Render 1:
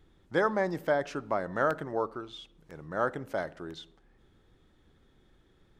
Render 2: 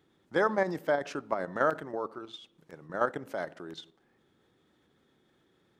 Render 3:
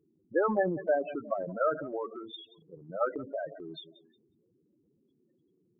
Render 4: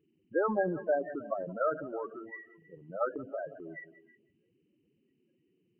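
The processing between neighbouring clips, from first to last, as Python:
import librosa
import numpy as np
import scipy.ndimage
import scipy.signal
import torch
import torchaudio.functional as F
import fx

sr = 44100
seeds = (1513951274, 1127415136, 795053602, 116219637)

y1 = scipy.signal.sosfilt(scipy.signal.butter(2, 160.0, 'highpass', fs=sr, output='sos'), x)
y1 = fx.level_steps(y1, sr, step_db=9)
y1 = y1 * 10.0 ** (3.0 / 20.0)
y2 = fx.echo_feedback(y1, sr, ms=179, feedback_pct=41, wet_db=-19.0)
y2 = fx.spec_topn(y2, sr, count=8)
y2 = fx.transient(y2, sr, attack_db=2, sustain_db=6)
y3 = fx.freq_compress(y2, sr, knee_hz=1600.0, ratio=4.0)
y3 = y3 + 10.0 ** (-20.0 / 20.0) * np.pad(y3, (int(319 * sr / 1000.0), 0))[:len(y3)]
y3 = y3 * 10.0 ** (-2.0 / 20.0)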